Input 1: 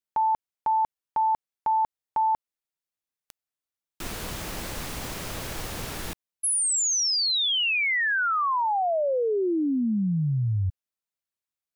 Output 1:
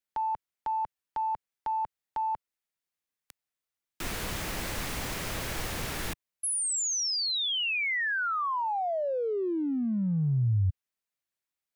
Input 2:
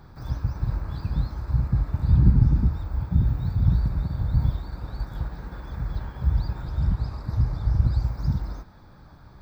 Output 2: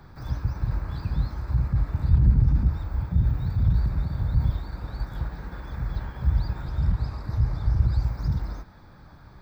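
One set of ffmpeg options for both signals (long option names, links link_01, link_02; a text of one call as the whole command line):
ffmpeg -i in.wav -filter_complex "[0:a]equalizer=frequency=2000:width=1.5:gain=3.5,acrossover=split=120[link_01][link_02];[link_02]acompressor=threshold=-28dB:ratio=6:attack=0.26:release=25:knee=2.83:detection=peak[link_03];[link_01][link_03]amix=inputs=2:normalize=0" out.wav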